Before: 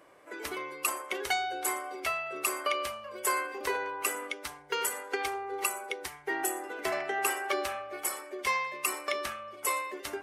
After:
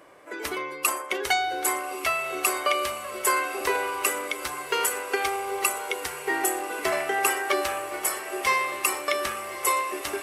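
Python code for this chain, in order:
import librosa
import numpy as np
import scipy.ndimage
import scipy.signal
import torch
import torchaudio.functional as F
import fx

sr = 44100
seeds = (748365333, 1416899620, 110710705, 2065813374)

y = fx.echo_diffused(x, sr, ms=1221, feedback_pct=60, wet_db=-11.5)
y = y * librosa.db_to_amplitude(6.0)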